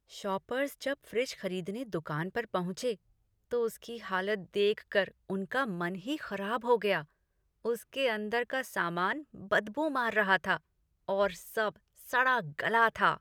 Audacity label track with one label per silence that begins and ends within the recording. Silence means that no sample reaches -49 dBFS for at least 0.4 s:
2.950000	3.510000	silence
7.040000	7.650000	silence
10.580000	11.080000	silence